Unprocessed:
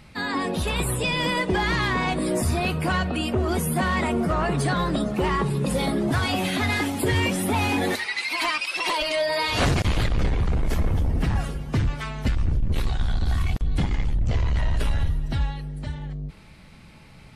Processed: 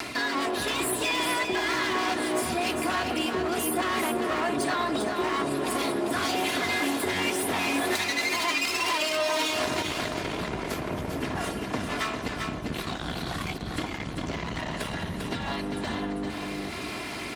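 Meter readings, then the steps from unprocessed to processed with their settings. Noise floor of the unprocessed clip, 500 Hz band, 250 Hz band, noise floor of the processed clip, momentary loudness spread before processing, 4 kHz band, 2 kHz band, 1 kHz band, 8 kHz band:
-47 dBFS, -1.5 dB, -3.5 dB, -35 dBFS, 5 LU, -0.5 dB, -1.5 dB, -1.0 dB, +1.5 dB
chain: comb filter that takes the minimum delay 2.9 ms; reverse; compression, threshold -32 dBFS, peak gain reduction 14 dB; reverse; Bessel high-pass 240 Hz, order 2; delay 396 ms -7 dB; upward compressor, threshold -31 dBFS; on a send: filtered feedback delay 830 ms, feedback 69%, low-pass 2.1 kHz, level -13 dB; on the sum: trim +7 dB

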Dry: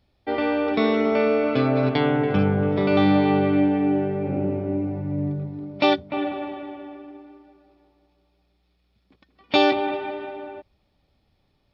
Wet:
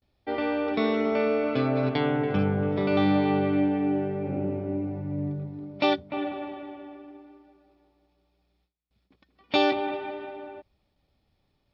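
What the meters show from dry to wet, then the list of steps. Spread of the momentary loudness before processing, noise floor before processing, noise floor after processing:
15 LU, -68 dBFS, -73 dBFS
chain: gate with hold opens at -59 dBFS; trim -4.5 dB

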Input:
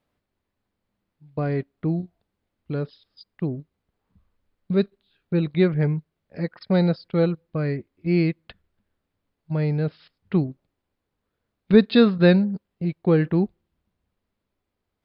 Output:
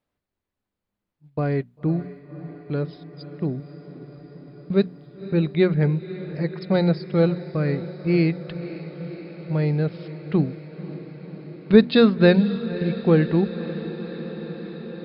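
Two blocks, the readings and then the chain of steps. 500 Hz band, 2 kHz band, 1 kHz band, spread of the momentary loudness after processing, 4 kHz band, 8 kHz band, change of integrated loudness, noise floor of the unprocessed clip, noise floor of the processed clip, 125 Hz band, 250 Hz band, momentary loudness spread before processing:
+2.0 dB, +2.0 dB, +2.0 dB, 21 LU, +2.0 dB, no reading, +0.5 dB, -81 dBFS, -84 dBFS, +1.0 dB, +1.0 dB, 14 LU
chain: gate -49 dBFS, range -7 dB; hum notches 60/120/180/240 Hz; on a send: echo that smears into a reverb 537 ms, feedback 77%, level -14.5 dB; on the sum: trim +1.5 dB

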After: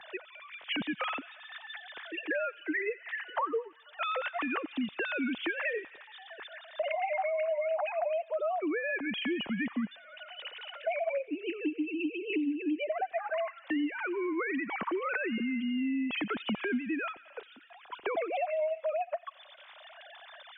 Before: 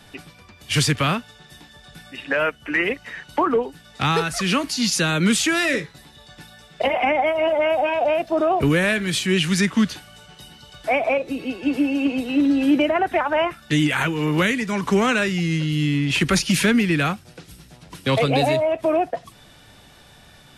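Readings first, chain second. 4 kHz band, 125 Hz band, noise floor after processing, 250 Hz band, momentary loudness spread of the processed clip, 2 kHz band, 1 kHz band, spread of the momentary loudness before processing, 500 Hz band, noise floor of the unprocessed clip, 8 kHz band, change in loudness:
-15.5 dB, under -25 dB, -55 dBFS, -12.5 dB, 15 LU, -11.0 dB, -12.0 dB, 7 LU, -11.0 dB, -49 dBFS, under -40 dB, -13.0 dB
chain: formants replaced by sine waves; compression 4:1, threshold -32 dBFS, peak gain reduction 19 dB; on a send: feedback echo behind a high-pass 88 ms, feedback 68%, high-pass 2 kHz, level -16 dB; on the sum: three bands compressed up and down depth 40%

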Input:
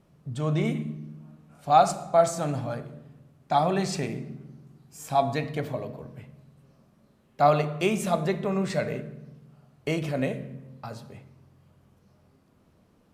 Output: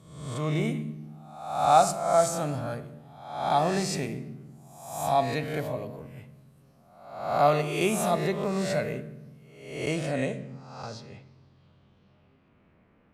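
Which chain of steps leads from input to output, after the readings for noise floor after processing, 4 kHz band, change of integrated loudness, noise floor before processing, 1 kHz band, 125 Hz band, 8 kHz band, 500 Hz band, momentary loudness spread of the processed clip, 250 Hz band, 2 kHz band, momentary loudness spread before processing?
-62 dBFS, +1.5 dB, -1.0 dB, -63 dBFS, 0.0 dB, -2.0 dB, +4.0 dB, -0.5 dB, 20 LU, -1.5 dB, +1.0 dB, 20 LU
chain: reverse spectral sustain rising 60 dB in 0.81 s; low-pass sweep 12 kHz -> 2.2 kHz, 9.47–12.80 s; trim -3 dB

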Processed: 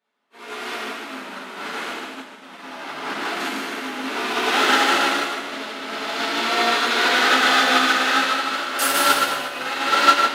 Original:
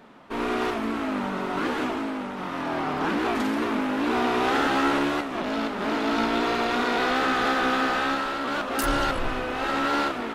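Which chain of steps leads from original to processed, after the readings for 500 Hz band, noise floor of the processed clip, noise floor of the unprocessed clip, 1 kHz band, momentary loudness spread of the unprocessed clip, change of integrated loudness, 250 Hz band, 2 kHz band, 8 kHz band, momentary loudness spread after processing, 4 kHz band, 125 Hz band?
0.0 dB, -42 dBFS, -33 dBFS, +4.5 dB, 6 LU, +6.0 dB, -4.0 dB, +7.5 dB, +12.5 dB, 17 LU, +11.0 dB, under -10 dB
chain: bass shelf 200 Hz -7.5 dB; on a send: two-band feedback delay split 440 Hz, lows 245 ms, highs 153 ms, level -5 dB; on the sum: gated-style reverb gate 440 ms falling, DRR -8 dB; in parallel at -6 dB: hard clipper -16.5 dBFS, distortion -8 dB; on the sum: high-pass 140 Hz 12 dB/octave; tilt shelf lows -6.5 dB, about 1.3 kHz; upward expansion 2.5:1, over -31 dBFS

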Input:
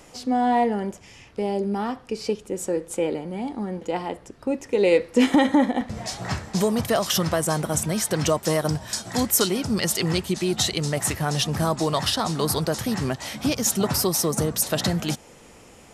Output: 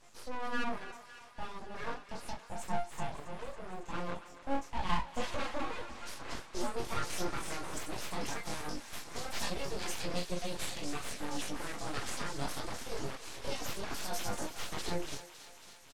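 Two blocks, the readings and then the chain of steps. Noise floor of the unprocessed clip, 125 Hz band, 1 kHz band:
-49 dBFS, -18.5 dB, -12.0 dB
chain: doubling 40 ms -5.5 dB; in parallel at -0.5 dB: peak limiter -16.5 dBFS, peak gain reduction 11.5 dB; on the sum: chorus 0.35 Hz, delay 20 ms, depth 2 ms; chord resonator A#2 minor, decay 0.33 s; reverb removal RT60 0.51 s; full-wave rectifier; low-pass 10 kHz 12 dB/octave; thinning echo 277 ms, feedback 76%, high-pass 730 Hz, level -12 dB; trim +2 dB

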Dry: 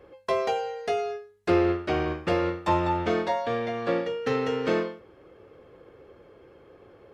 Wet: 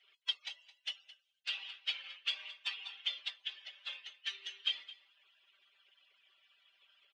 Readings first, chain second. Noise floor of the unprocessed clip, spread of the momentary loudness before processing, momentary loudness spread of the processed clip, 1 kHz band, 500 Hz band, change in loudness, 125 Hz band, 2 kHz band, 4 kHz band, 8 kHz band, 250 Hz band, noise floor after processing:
-54 dBFS, 5 LU, 8 LU, -32.5 dB, under -40 dB, -12.5 dB, under -40 dB, -9.5 dB, +4.5 dB, no reading, under -40 dB, -79 dBFS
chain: harmonic-percussive separation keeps percussive; comb 5.1 ms, depth 81%; in parallel at -4.5 dB: hard clipper -35 dBFS, distortion -7 dB; on the sum: ladder band-pass 3.3 kHz, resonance 75%; delay 216 ms -17.5 dB; trim +9 dB

